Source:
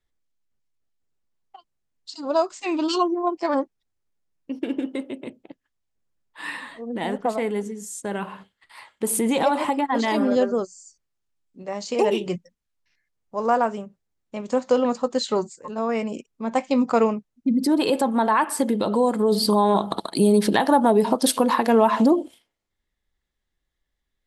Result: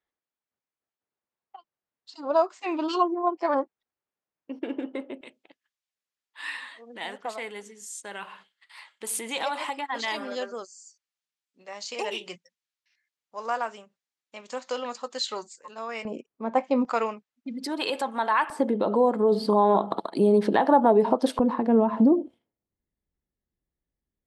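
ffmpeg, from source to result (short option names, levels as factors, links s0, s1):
-af "asetnsamples=n=441:p=0,asendcmd='5.21 bandpass f 3500;16.05 bandpass f 680;16.85 bandpass f 2300;18.5 bandpass f 600;21.39 bandpass f 180',bandpass=f=950:t=q:w=0.57:csg=0"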